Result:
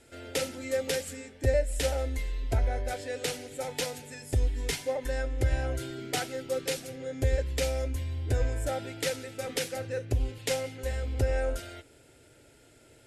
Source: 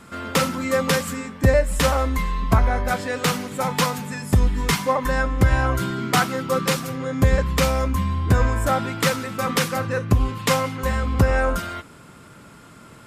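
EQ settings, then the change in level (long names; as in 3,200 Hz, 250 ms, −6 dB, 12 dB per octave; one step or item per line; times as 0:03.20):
Chebyshev low-pass filter 12,000 Hz, order 5
phaser with its sweep stopped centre 460 Hz, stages 4
−7.0 dB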